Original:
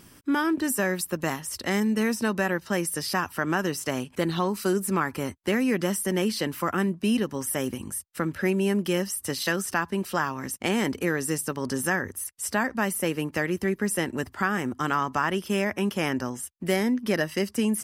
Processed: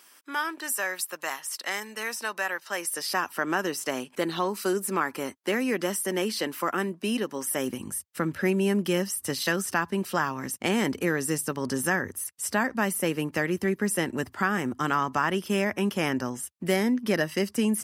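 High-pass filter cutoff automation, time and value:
0:02.65 780 Hz
0:03.31 280 Hz
0:07.46 280 Hz
0:07.94 90 Hz

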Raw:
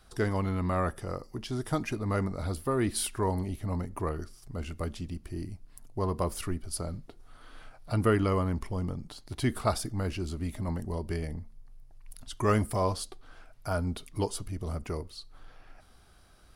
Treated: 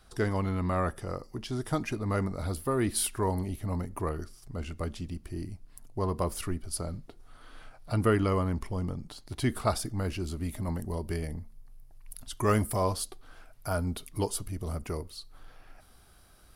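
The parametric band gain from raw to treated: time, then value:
parametric band 13,000 Hz 0.67 octaves
0:01.93 0 dB
0:02.45 +6 dB
0:04.10 +6 dB
0:04.75 −4.5 dB
0:05.05 +2 dB
0:09.81 +2 dB
0:10.61 +10.5 dB

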